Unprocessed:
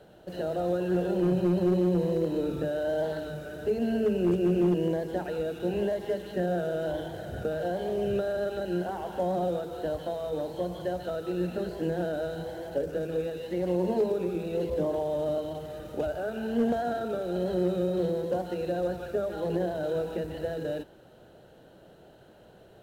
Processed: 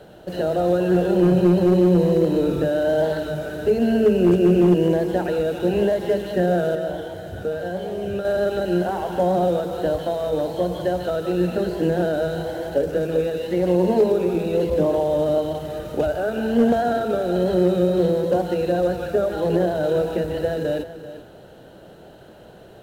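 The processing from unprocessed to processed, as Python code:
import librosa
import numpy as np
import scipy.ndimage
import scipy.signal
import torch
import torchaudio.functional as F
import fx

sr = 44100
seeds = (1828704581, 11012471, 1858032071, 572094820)

y = fx.comb_fb(x, sr, f0_hz=93.0, decay_s=0.18, harmonics='all', damping=0.0, mix_pct=80, at=(6.75, 8.25))
y = y + 10.0 ** (-13.5 / 20.0) * np.pad(y, (int(388 * sr / 1000.0), 0))[:len(y)]
y = F.gain(torch.from_numpy(y), 9.0).numpy()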